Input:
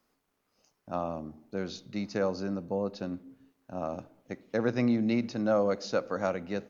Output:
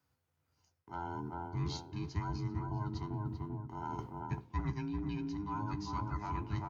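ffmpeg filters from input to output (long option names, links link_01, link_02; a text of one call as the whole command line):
ffmpeg -i in.wav -filter_complex "[0:a]afftfilt=real='real(if(between(b,1,1008),(2*floor((b-1)/24)+1)*24-b,b),0)':imag='imag(if(between(b,1,1008),(2*floor((b-1)/24)+1)*24-b,b),0)*if(between(b,1,1008),-1,1)':win_size=2048:overlap=0.75,agate=range=-10dB:threshold=-59dB:ratio=16:detection=peak,highpass=frequency=76:width=0.5412,highpass=frequency=76:width=1.3066,asplit=2[link_01][link_02];[link_02]adelay=391,lowpass=frequency=920:poles=1,volume=-3.5dB,asplit=2[link_03][link_04];[link_04]adelay=391,lowpass=frequency=920:poles=1,volume=0.4,asplit=2[link_05][link_06];[link_06]adelay=391,lowpass=frequency=920:poles=1,volume=0.4,asplit=2[link_07][link_08];[link_08]adelay=391,lowpass=frequency=920:poles=1,volume=0.4,asplit=2[link_09][link_10];[link_10]adelay=391,lowpass=frequency=920:poles=1,volume=0.4[link_11];[link_01][link_03][link_05][link_07][link_09][link_11]amix=inputs=6:normalize=0,adynamicequalizer=threshold=0.0112:dfrequency=330:dqfactor=4.6:tfrequency=330:tqfactor=4.6:attack=5:release=100:ratio=0.375:range=1.5:mode=boostabove:tftype=bell,areverse,acompressor=threshold=-41dB:ratio=5,areverse,lowshelf=frequency=160:width_type=q:width=1.5:gain=11.5,asplit=2[link_12][link_13];[link_13]adelay=14,volume=-11dB[link_14];[link_12][link_14]amix=inputs=2:normalize=0,volume=2.5dB" out.wav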